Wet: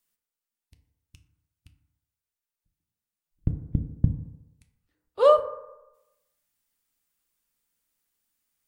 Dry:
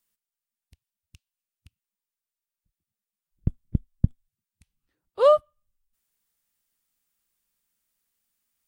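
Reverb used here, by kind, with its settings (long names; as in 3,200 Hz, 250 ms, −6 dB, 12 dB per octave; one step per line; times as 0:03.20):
feedback delay network reverb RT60 0.98 s, low-frequency decay 0.8×, high-frequency decay 0.35×, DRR 5 dB
level −1 dB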